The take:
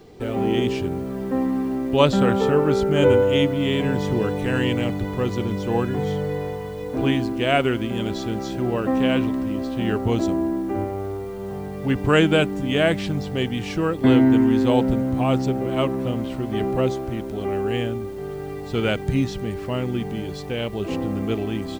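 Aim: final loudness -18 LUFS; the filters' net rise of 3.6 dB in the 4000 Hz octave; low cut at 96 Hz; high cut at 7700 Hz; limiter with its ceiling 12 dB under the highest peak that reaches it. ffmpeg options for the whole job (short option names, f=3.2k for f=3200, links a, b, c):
-af "highpass=96,lowpass=7.7k,equalizer=f=4k:t=o:g=5.5,volume=6.5dB,alimiter=limit=-6.5dB:level=0:latency=1"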